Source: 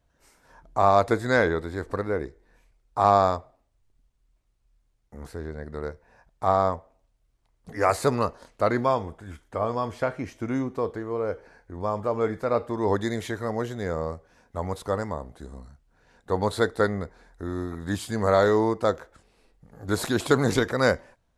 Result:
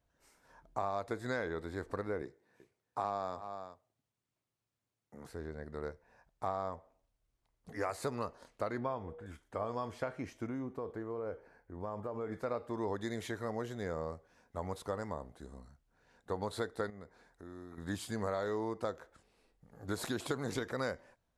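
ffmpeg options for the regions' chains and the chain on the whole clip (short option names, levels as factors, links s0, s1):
-filter_complex "[0:a]asettb=1/sr,asplit=3[s0][s1][s2];[s0]atrim=end=2.224[s3];[s1]atrim=start=2.22:end=5.29,asetpts=PTS-STARTPTS,afade=t=in:d=0.004:c=qsin,afade=t=out:st=3.066:d=0.004:c=qsin,highpass=f=100:w=0.5412,highpass=f=100:w=1.3066,aecho=1:1:374:0.126,atrim=end_sample=135387[s4];[s2]atrim=start=5.286[s5];[s3][s4]acrossfade=d=0.004:c1=hsin:c2=qsin[s6];[s6][s5]acrossfade=d=0.004:c1=qsin:c2=hsin,asettb=1/sr,asplit=3[s7][s8][s9];[s7]atrim=end=8.784[s10];[s8]atrim=start=8.78:end=9.26,asetpts=PTS-STARTPTS,afade=t=in:d=0.004:c=qsin,afade=t=out:st=0.476:d=0.004:c=qsin,bass=f=250:g=2,treble=f=4000:g=-14,aeval=exprs='val(0)+0.00891*sin(2*PI*480*n/s)':c=same[s11];[s9]atrim=start=9.256[s12];[s10][s11]acrossfade=d=0.004:c1=hsin:c2=qsin[s13];[s13][s12]acrossfade=d=0.004:c1=qsin:c2=hsin,asettb=1/sr,asplit=3[s14][s15][s16];[s14]atrim=end=10.474[s17];[s15]atrim=start=10.47:end=12.32,asetpts=PTS-STARTPTS,afade=t=in:d=0.004:c=qsin,afade=t=out:st=1.846:d=0.004:c=qsin,equalizer=f=5500:w=0.49:g=-8.5,acompressor=threshold=0.0447:ratio=6:attack=3.2:release=140:knee=1:detection=peak[s18];[s16]atrim=start=12.316[s19];[s17][s18]acrossfade=d=0.004:c1=hsin:c2=qsin[s20];[s20][s19]acrossfade=d=0.004:c1=qsin:c2=hsin,asettb=1/sr,asplit=3[s21][s22][s23];[s21]atrim=end=16.904[s24];[s22]atrim=start=16.9:end=17.78,asetpts=PTS-STARTPTS,afade=t=in:d=0.004:c=qsin,afade=t=out:st=0.876:d=0.004:c=qsin,highpass=f=83:p=1,acompressor=threshold=0.00631:ratio=2:attack=3.2:release=140:knee=1:detection=peak[s25];[s23]atrim=start=17.776[s26];[s24][s25]acrossfade=d=0.004:c1=hsin:c2=qsin[s27];[s27][s26]acrossfade=d=0.004:c1=qsin:c2=hsin,lowshelf=f=74:g=-6,acompressor=threshold=0.0562:ratio=6,volume=0.422"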